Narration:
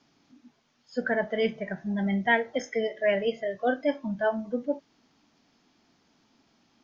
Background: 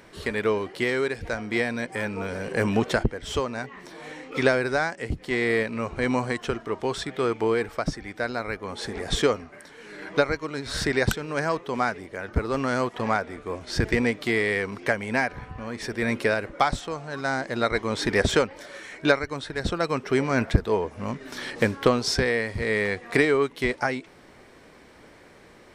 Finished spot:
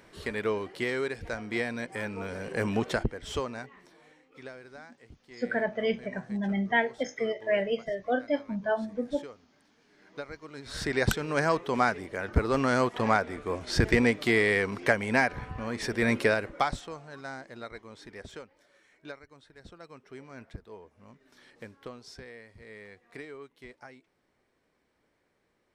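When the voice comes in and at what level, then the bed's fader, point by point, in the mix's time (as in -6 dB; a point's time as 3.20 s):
4.45 s, -2.0 dB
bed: 3.50 s -5.5 dB
4.30 s -23.5 dB
9.90 s -23.5 dB
11.21 s 0 dB
16.19 s 0 dB
18.10 s -23 dB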